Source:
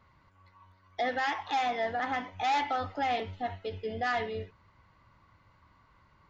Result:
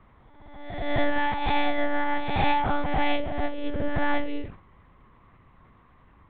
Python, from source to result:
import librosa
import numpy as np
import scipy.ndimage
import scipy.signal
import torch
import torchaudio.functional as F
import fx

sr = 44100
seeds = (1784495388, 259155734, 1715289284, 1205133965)

y = fx.spec_swells(x, sr, rise_s=1.14)
y = fx.low_shelf(y, sr, hz=92.0, db=-9.5)
y = fx.lpc_monotone(y, sr, seeds[0], pitch_hz=290.0, order=8)
y = fx.low_shelf(y, sr, hz=470.0, db=10.5)
y = fx.sustainer(y, sr, db_per_s=130.0)